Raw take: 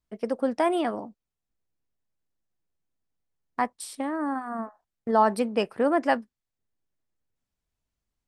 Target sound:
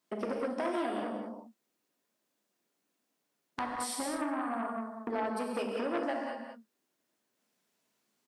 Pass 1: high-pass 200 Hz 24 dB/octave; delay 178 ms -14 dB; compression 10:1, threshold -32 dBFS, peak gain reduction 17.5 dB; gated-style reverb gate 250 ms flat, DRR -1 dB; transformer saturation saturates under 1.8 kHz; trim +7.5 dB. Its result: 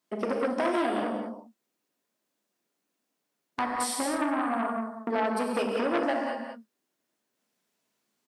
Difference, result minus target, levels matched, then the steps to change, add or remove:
compression: peak gain reduction -6.5 dB
change: compression 10:1, threshold -39.5 dBFS, peak gain reduction 24.5 dB

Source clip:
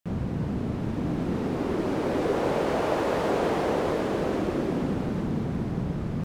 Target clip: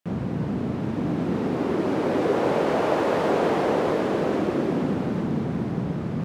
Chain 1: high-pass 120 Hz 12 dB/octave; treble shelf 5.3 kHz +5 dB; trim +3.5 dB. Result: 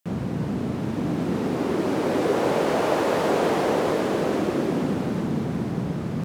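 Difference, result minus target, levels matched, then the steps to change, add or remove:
8 kHz band +7.0 dB
change: treble shelf 5.3 kHz -6 dB

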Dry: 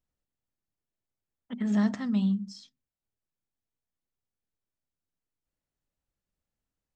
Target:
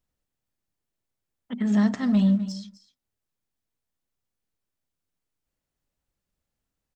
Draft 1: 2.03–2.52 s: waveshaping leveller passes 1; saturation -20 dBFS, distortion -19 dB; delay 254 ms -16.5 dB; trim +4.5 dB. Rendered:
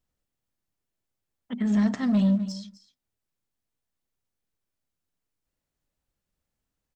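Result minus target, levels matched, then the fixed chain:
saturation: distortion +14 dB
2.03–2.52 s: waveshaping leveller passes 1; saturation -11.5 dBFS, distortion -34 dB; delay 254 ms -16.5 dB; trim +4.5 dB

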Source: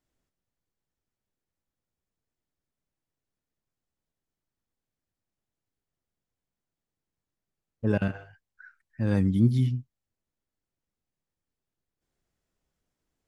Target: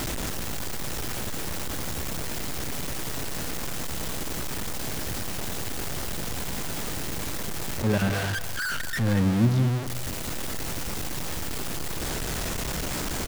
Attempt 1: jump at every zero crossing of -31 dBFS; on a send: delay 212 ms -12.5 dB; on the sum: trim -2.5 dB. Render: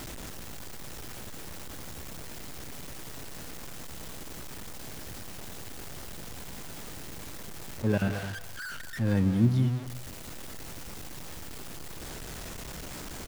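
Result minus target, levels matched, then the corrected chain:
jump at every zero crossing: distortion -8 dB
jump at every zero crossing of -20.5 dBFS; on a send: delay 212 ms -12.5 dB; on the sum: trim -2.5 dB

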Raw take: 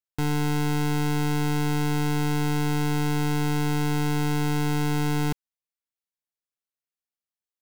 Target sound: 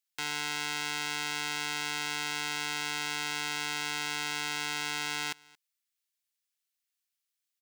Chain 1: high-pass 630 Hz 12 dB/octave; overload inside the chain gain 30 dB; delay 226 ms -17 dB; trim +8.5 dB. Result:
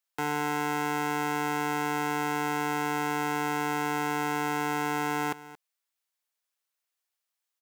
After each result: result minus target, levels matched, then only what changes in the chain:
500 Hz band +11.0 dB; echo-to-direct +8 dB
change: high-pass 2 kHz 12 dB/octave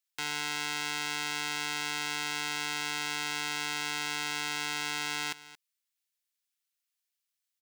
echo-to-direct +8 dB
change: delay 226 ms -25 dB

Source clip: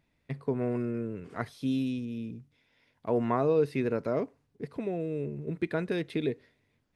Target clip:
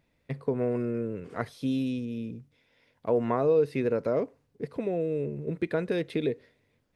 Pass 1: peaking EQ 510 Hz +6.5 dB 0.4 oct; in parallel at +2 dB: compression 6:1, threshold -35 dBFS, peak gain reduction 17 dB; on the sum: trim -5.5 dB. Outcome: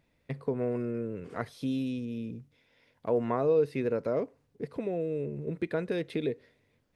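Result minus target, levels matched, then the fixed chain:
compression: peak gain reduction +7.5 dB
peaking EQ 510 Hz +6.5 dB 0.4 oct; in parallel at +2 dB: compression 6:1, threshold -26 dBFS, peak gain reduction 9.5 dB; on the sum: trim -5.5 dB

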